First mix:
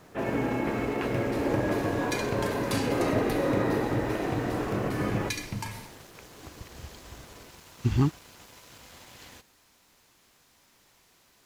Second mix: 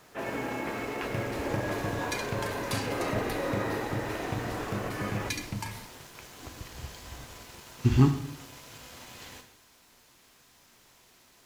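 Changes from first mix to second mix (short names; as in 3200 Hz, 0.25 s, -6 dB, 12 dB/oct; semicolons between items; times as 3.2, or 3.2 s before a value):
speech: send on; first sound: add low shelf 490 Hz -10 dB; second sound: send -8.5 dB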